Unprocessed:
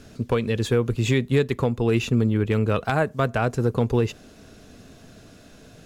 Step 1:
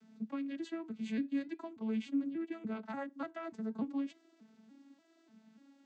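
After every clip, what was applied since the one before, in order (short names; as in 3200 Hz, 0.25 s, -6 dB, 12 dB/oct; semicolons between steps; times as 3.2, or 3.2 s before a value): arpeggiated vocoder major triad, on A3, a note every 0.293 s; flange 0.41 Hz, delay 0.8 ms, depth 5.5 ms, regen -83%; bell 490 Hz -12 dB 0.93 oct; gain -7 dB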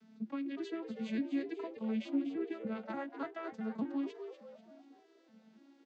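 Chebyshev low-pass 5100 Hz, order 2; on a send: frequency-shifting echo 0.244 s, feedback 41%, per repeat +120 Hz, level -10 dB; on the sum: gain +1 dB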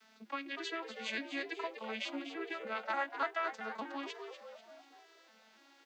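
HPF 940 Hz 12 dB/oct; gain +11.5 dB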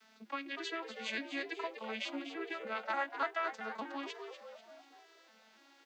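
nothing audible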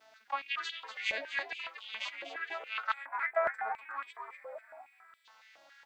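hum 60 Hz, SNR 21 dB; spectral gain 2.93–5.25, 2600–7400 Hz -19 dB; stepped high-pass 7.2 Hz 620–3300 Hz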